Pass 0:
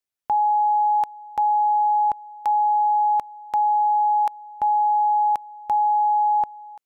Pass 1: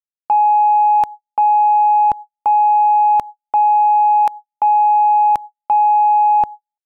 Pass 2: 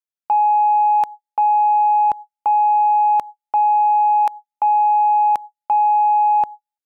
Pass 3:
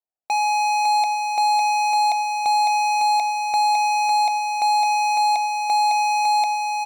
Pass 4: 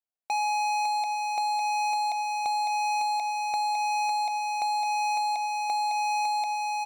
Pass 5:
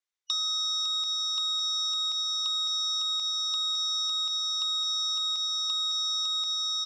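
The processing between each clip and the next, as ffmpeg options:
-af "agate=range=0.00178:threshold=0.0251:ratio=16:detection=peak,lowshelf=f=280:g=7.5,acontrast=69"
-af "lowshelf=f=190:g=-11,volume=0.794"
-af "lowpass=f=740:t=q:w=4.9,asoftclip=type=hard:threshold=0.133,aecho=1:1:554:0.631,volume=0.794"
-af "acompressor=threshold=0.1:ratio=6,volume=0.531"
-filter_complex "[0:a]afftfilt=real='real(if(lt(b,272),68*(eq(floor(b/68),0)*2+eq(floor(b/68),1)*3+eq(floor(b/68),2)*0+eq(floor(b/68),3)*1)+mod(b,68),b),0)':imag='imag(if(lt(b,272),68*(eq(floor(b/68),0)*2+eq(floor(b/68),1)*3+eq(floor(b/68),2)*0+eq(floor(b/68),3)*1)+mod(b,68),b),0)':win_size=2048:overlap=0.75,highpass=350,equalizer=f=680:t=q:w=4:g=-5,equalizer=f=2100:t=q:w=4:g=4,equalizer=f=6000:t=q:w=4:g=4,lowpass=f=8200:w=0.5412,lowpass=f=8200:w=1.3066,acrossover=split=1200|3500[s0][s1][s2];[s0]acompressor=threshold=0.00251:ratio=4[s3];[s1]acompressor=threshold=0.00708:ratio=4[s4];[s2]acompressor=threshold=0.02:ratio=4[s5];[s3][s4][s5]amix=inputs=3:normalize=0,volume=1.5"

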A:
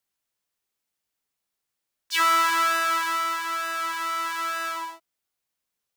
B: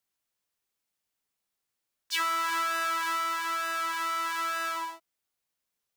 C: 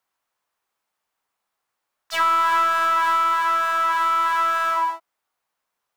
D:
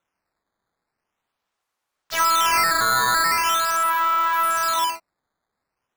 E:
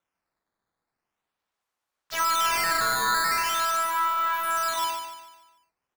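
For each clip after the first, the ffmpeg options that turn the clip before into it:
-af "acompressor=threshold=0.0631:ratio=6,volume=0.841"
-af "aeval=exprs='clip(val(0),-1,0.0282)':c=same,equalizer=f=1000:w=0.62:g=14.5"
-af "acrusher=samples=9:mix=1:aa=0.000001:lfo=1:lforange=14.4:lforate=0.42"
-af "aecho=1:1:147|294|441|588|735:0.398|0.167|0.0702|0.0295|0.0124,volume=0.531"

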